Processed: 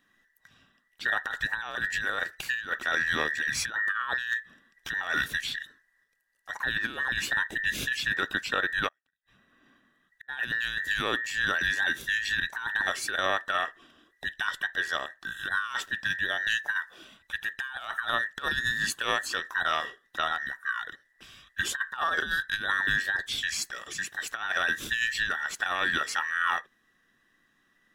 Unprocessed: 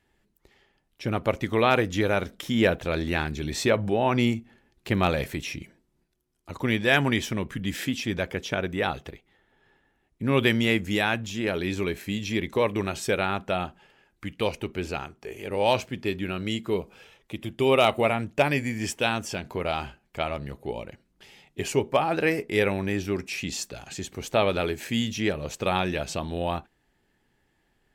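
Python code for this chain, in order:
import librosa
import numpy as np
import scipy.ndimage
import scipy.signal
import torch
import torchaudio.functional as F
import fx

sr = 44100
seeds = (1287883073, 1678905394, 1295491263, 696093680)

y = fx.band_invert(x, sr, width_hz=2000)
y = fx.over_compress(y, sr, threshold_db=-26.0, ratio=-0.5)
y = fx.gate_flip(y, sr, shuts_db=-31.0, range_db=-42, at=(8.87, 10.28), fade=0.02)
y = y * librosa.db_to_amplitude(-1.5)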